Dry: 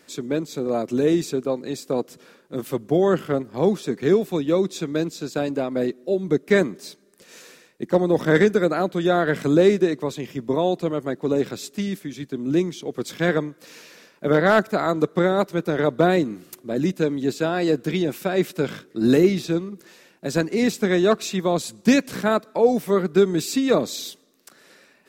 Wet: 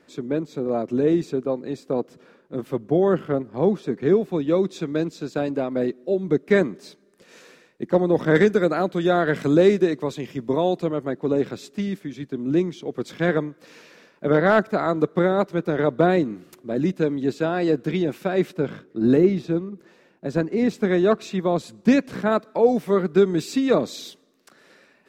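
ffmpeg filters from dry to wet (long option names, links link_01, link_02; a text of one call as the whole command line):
ffmpeg -i in.wav -af "asetnsamples=nb_out_samples=441:pad=0,asendcmd='4.4 lowpass f 2700;8.36 lowpass f 5500;10.86 lowpass f 2500;18.54 lowpass f 1100;20.71 lowpass f 1800;22.32 lowpass f 3200',lowpass=frequency=1500:poles=1" out.wav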